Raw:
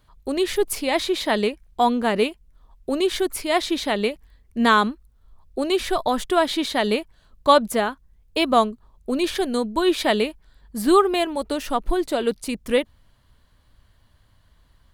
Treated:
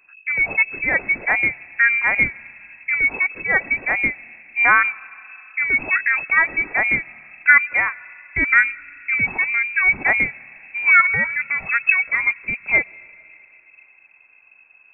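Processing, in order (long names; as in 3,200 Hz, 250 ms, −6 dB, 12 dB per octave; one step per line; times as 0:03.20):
on a send at −23 dB: convolution reverb RT60 3.6 s, pre-delay 70 ms
on the sum: voice inversion scrambler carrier 2,600 Hz
level +2.5 dB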